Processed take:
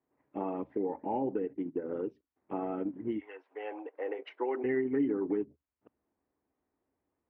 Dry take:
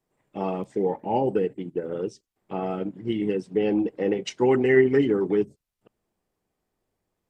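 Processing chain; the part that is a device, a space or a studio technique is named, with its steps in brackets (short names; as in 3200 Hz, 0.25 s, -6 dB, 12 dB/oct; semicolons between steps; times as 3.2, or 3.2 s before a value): 3.18–4.63 HPF 820 Hz -> 370 Hz 24 dB/oct; bass amplifier (compressor 3:1, threshold -28 dBFS, peak gain reduction 11.5 dB; speaker cabinet 63–2200 Hz, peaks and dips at 76 Hz +6 dB, 110 Hz -8 dB, 180 Hz -7 dB, 280 Hz +9 dB, 960 Hz +3 dB); gain -4.5 dB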